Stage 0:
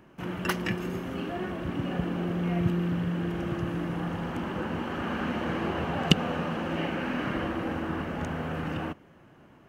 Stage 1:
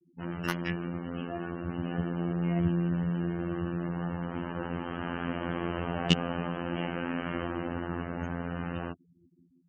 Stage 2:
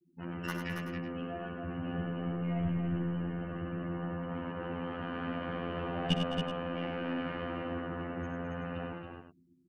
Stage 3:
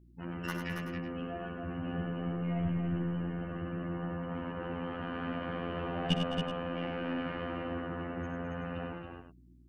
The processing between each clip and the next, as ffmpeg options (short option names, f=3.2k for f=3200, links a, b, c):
-af "afftfilt=real='hypot(re,im)*cos(PI*b)':imag='0':win_size=2048:overlap=0.75,afftfilt=real='re*gte(hypot(re,im),0.00708)':imag='im*gte(hypot(re,im),0.00708)':win_size=1024:overlap=0.75"
-filter_complex "[0:a]aeval=exprs='(tanh(2.82*val(0)+0.65)-tanh(0.65))/2.82':c=same,asplit=2[a][b];[b]aecho=0:1:62|97|211|277|379:0.237|0.473|0.224|0.501|0.211[c];[a][c]amix=inputs=2:normalize=0"
-af "aeval=exprs='val(0)+0.00126*(sin(2*PI*60*n/s)+sin(2*PI*2*60*n/s)/2+sin(2*PI*3*60*n/s)/3+sin(2*PI*4*60*n/s)/4+sin(2*PI*5*60*n/s)/5)':c=same"